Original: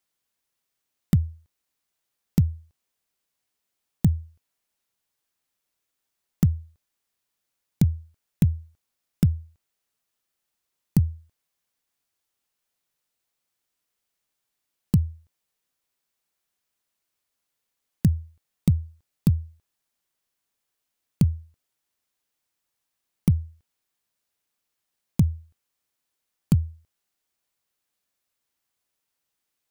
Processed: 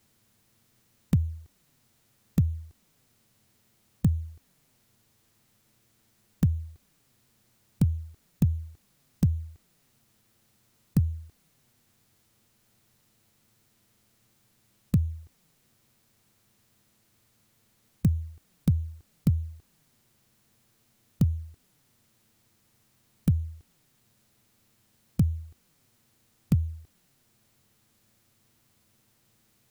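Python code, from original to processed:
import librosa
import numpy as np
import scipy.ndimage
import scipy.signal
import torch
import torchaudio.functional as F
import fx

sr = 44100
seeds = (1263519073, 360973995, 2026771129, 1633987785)

y = fx.bin_compress(x, sr, power=0.6)
y = fx.env_flanger(y, sr, rest_ms=9.3, full_db=-18.0)
y = F.gain(torch.from_numpy(y), -4.0).numpy()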